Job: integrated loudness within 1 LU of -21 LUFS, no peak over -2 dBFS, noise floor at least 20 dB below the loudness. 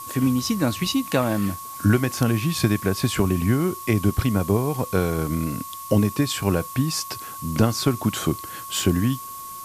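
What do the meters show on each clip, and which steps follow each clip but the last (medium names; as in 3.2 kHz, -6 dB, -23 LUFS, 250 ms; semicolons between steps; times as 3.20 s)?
steady tone 1.1 kHz; tone level -35 dBFS; noise floor -36 dBFS; noise floor target -43 dBFS; loudness -23.0 LUFS; peak level -6.0 dBFS; loudness target -21.0 LUFS
-> band-stop 1.1 kHz, Q 30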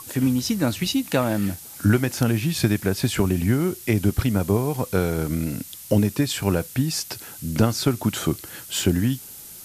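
steady tone not found; noise floor -41 dBFS; noise floor target -44 dBFS
-> noise reduction 6 dB, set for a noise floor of -41 dBFS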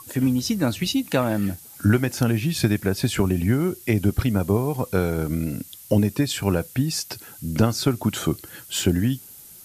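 noise floor -45 dBFS; loudness -23.5 LUFS; peak level -6.0 dBFS; loudness target -21.0 LUFS
-> trim +2.5 dB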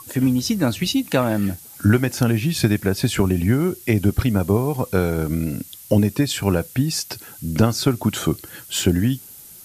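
loudness -21.0 LUFS; peak level -3.5 dBFS; noise floor -42 dBFS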